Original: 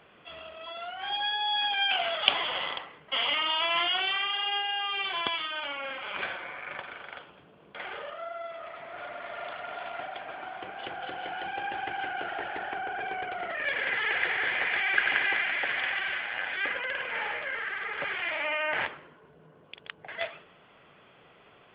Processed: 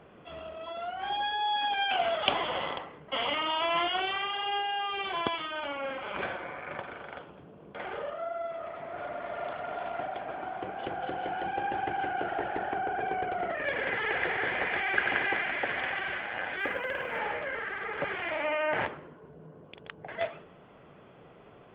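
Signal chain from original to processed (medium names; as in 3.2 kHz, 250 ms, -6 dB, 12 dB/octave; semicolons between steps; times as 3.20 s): tilt shelf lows +8 dB, about 1.2 kHz; 16.59–17.19 s: companded quantiser 8-bit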